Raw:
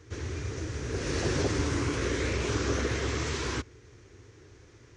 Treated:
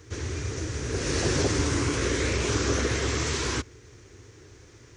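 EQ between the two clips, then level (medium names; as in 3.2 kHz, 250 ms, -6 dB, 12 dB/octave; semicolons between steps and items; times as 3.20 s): treble shelf 6.9 kHz +10 dB; +3.0 dB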